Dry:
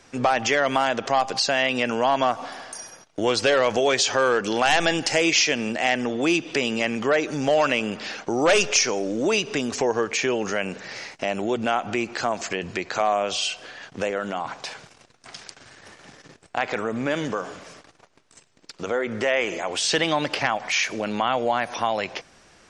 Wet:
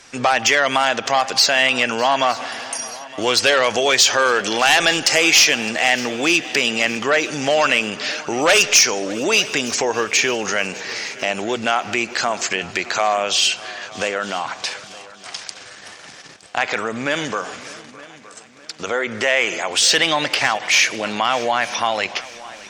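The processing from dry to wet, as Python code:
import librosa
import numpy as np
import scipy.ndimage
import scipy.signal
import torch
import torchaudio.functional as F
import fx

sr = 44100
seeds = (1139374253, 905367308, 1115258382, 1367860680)

y = fx.tilt_shelf(x, sr, db=-5.5, hz=970.0)
y = fx.cheby_harmonics(y, sr, harmonics=(5,), levels_db=(-16,), full_scale_db=-1.5)
y = fx.echo_heads(y, sr, ms=305, heads='second and third', feedback_pct=47, wet_db=-20.0)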